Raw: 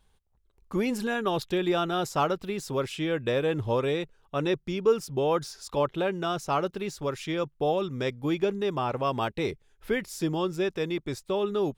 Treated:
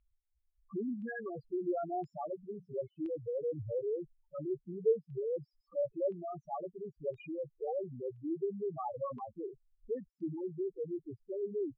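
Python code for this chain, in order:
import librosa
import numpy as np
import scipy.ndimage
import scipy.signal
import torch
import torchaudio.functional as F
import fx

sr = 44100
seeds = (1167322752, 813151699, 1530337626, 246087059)

y = fx.hum_notches(x, sr, base_hz=60, count=6, at=(2.21, 2.72))
y = fx.spec_topn(y, sr, count=2)
y = fx.filter_lfo_lowpass(y, sr, shape='saw_down', hz=0.98, low_hz=650.0, high_hz=2700.0, q=2.8)
y = y * librosa.db_to_amplitude(-7.5)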